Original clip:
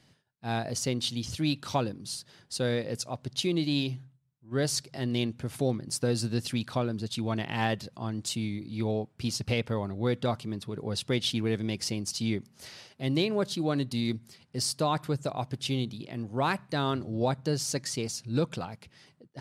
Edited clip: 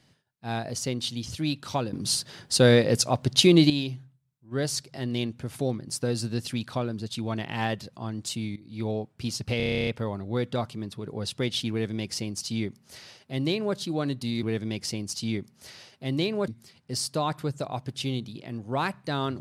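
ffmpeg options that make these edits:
-filter_complex "[0:a]asplit=16[a][b][c][d][e][f][g][h][i][j][k][l][m][n][o][p];[a]atrim=end=1.932[q];[b]atrim=start=1.928:end=3.702,asetpts=PTS-STARTPTS,volume=11dB[r];[c]atrim=start=3.698:end=8.56,asetpts=PTS-STARTPTS,afade=t=out:st=4.858:d=0.004:c=hsin:silence=0.149624[s];[d]atrim=start=8.56:end=9.602,asetpts=PTS-STARTPTS,afade=t=in:d=0.29:silence=0.149624[t];[e]atrim=start=9.568:end=9.602[u];[f]atrim=start=9.568:end=9.602[v];[g]atrim=start=9.568:end=9.602[w];[h]atrim=start=9.568:end=9.602[x];[i]atrim=start=9.568:end=9.602[y];[j]atrim=start=9.568:end=9.602[z];[k]atrim=start=9.568:end=9.602[aa];[l]atrim=start=9.568:end=9.602[ab];[m]atrim=start=9.568:end=9.602[ac];[n]atrim=start=9.568:end=14.132[ad];[o]atrim=start=11.408:end=13.462[ae];[p]atrim=start=14.128[af];[q][r]acrossfade=d=0.004:c1=hsin:c2=hsin[ag];[s][t]concat=n=2:v=0:a=1[ah];[ag][ah]acrossfade=d=0.004:c1=hsin:c2=hsin[ai];[ai][u]acrossfade=d=0.004:c1=hsin:c2=hsin[aj];[aj][v]acrossfade=d=0.004:c1=hsin:c2=hsin[ak];[ak][w]acrossfade=d=0.004:c1=hsin:c2=hsin[al];[al][x]acrossfade=d=0.004:c1=hsin:c2=hsin[am];[am][y]acrossfade=d=0.004:c1=hsin:c2=hsin[an];[an][z]acrossfade=d=0.004:c1=hsin:c2=hsin[ao];[ao][aa]acrossfade=d=0.004:c1=hsin:c2=hsin[ap];[ap][ab]acrossfade=d=0.004:c1=hsin:c2=hsin[aq];[aq][ac]acrossfade=d=0.004:c1=hsin:c2=hsin[ar];[ar][ad]acrossfade=d=0.004:c1=hsin:c2=hsin[as];[as][ae]acrossfade=d=0.004:c1=hsin:c2=hsin[at];[at][af]acrossfade=d=0.004:c1=hsin:c2=hsin"

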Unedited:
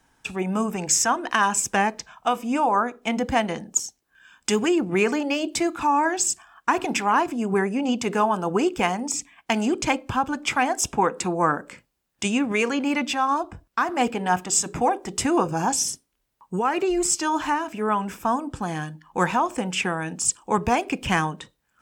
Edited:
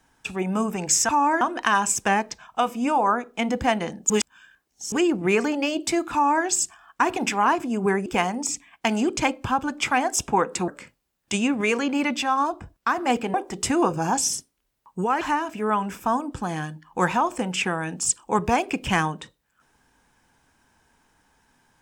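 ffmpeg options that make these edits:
-filter_complex "[0:a]asplit=9[a][b][c][d][e][f][g][h][i];[a]atrim=end=1.092[j];[b]atrim=start=5.808:end=6.132[k];[c]atrim=start=1.088:end=3.782[l];[d]atrim=start=3.778:end=4.602,asetpts=PTS-STARTPTS,areverse[m];[e]atrim=start=4.598:end=7.742[n];[f]atrim=start=8.708:end=11.332[o];[g]atrim=start=11.588:end=14.252[p];[h]atrim=start=14.888:end=16.762[q];[i]atrim=start=17.398[r];[j][k]acrossfade=d=0.004:c1=hsin:c2=hsin[s];[s][l]acrossfade=d=0.004:c1=hsin:c2=hsin[t];[t][m]acrossfade=d=0.004:c1=hsin:c2=hsin[u];[u][n]acrossfade=d=0.004:c1=hsin:c2=hsin[v];[v][o]acrossfade=d=0.004:c1=hsin:c2=hsin[w];[w][p]acrossfade=d=0.004:c1=hsin:c2=hsin[x];[x][q]acrossfade=d=0.004:c1=hsin:c2=hsin[y];[y][r]acrossfade=d=0.004:c1=hsin:c2=hsin"

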